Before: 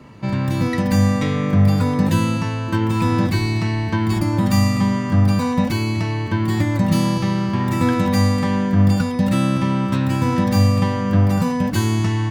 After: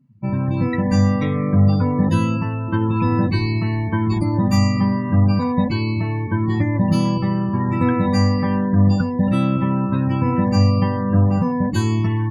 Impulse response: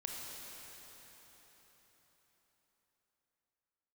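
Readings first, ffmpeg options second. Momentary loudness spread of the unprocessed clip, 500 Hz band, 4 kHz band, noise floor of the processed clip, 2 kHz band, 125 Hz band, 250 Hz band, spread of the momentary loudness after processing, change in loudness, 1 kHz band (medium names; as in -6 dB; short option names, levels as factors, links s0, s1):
5 LU, -0.5 dB, -4.0 dB, -24 dBFS, -3.0 dB, 0.0 dB, 0.0 dB, 5 LU, 0.0 dB, -0.5 dB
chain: -af "afftdn=nr=36:nf=-27"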